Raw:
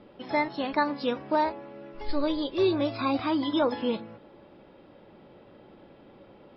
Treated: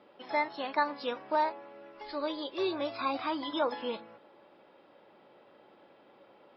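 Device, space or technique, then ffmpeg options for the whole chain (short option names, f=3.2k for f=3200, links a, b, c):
filter by subtraction: -filter_complex "[0:a]asplit=2[a][b];[b]lowpass=890,volume=-1[c];[a][c]amix=inputs=2:normalize=0,volume=-4dB"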